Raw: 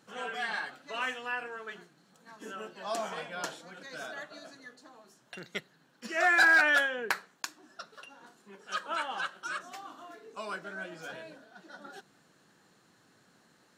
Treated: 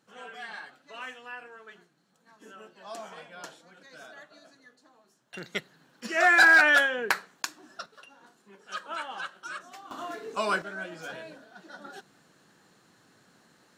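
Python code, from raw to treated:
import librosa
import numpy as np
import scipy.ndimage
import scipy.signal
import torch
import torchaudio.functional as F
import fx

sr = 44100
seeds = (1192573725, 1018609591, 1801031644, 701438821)

y = fx.gain(x, sr, db=fx.steps((0.0, -6.5), (5.34, 4.5), (7.86, -2.0), (9.91, 11.0), (10.62, 3.0)))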